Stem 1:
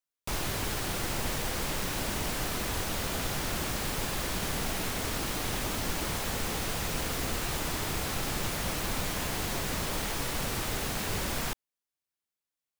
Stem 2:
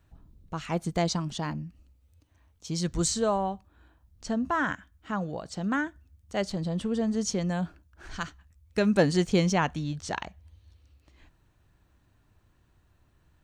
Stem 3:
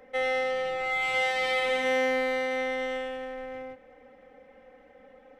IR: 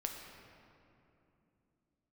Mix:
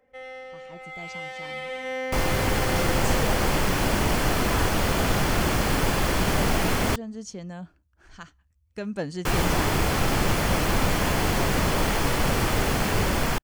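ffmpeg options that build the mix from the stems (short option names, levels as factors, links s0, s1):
-filter_complex "[0:a]highshelf=f=3400:g=-9,adelay=1850,volume=1.12,asplit=3[s0][s1][s2];[s0]atrim=end=6.96,asetpts=PTS-STARTPTS,afade=t=out:st=6.956:d=0.004:c=hsin[s3];[s1]atrim=start=6.96:end=9.25,asetpts=PTS-STARTPTS,volume=0[s4];[s2]atrim=start=9.25,asetpts=PTS-STARTPTS,afade=t=in:d=0.004:c=hsin[s5];[s3][s4][s5]concat=n=3:v=0:a=1[s6];[1:a]volume=0.119[s7];[2:a]volume=0.237[s8];[s6][s7][s8]amix=inputs=3:normalize=0,bandreject=f=3800:w=14,dynaudnorm=f=710:g=5:m=3.16"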